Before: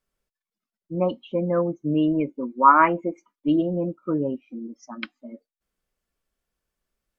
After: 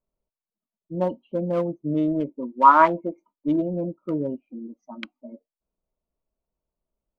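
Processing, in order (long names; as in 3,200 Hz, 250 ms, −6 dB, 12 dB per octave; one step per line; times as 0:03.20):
adaptive Wiener filter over 25 samples
hollow resonant body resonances 640/920 Hz, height 8 dB
level −1.5 dB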